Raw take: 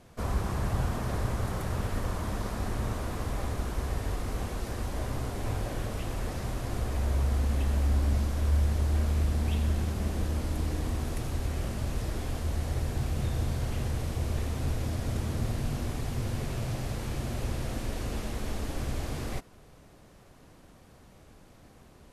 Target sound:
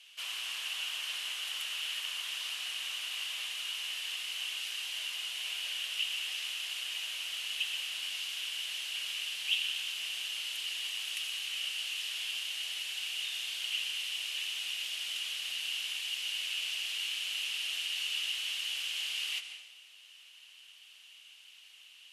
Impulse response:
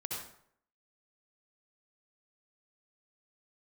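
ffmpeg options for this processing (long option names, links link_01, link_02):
-filter_complex "[0:a]highpass=frequency=2900:width_type=q:width=9.7,asplit=2[link_01][link_02];[1:a]atrim=start_sample=2205,asetrate=23373,aresample=44100[link_03];[link_02][link_03]afir=irnorm=-1:irlink=0,volume=-10.5dB[link_04];[link_01][link_04]amix=inputs=2:normalize=0" -ar 48000 -c:a libmp3lame -b:a 112k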